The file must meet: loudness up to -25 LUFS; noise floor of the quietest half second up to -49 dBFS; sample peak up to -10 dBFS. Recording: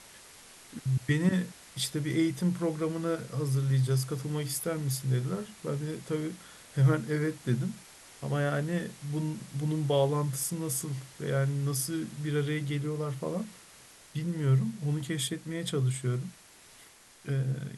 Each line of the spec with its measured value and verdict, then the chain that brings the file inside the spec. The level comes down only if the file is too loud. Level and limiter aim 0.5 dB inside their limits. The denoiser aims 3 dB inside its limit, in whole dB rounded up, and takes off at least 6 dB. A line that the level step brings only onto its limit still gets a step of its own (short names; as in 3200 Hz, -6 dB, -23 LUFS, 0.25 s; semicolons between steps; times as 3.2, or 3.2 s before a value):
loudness -31.0 LUFS: OK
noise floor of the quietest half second -56 dBFS: OK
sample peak -14.5 dBFS: OK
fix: none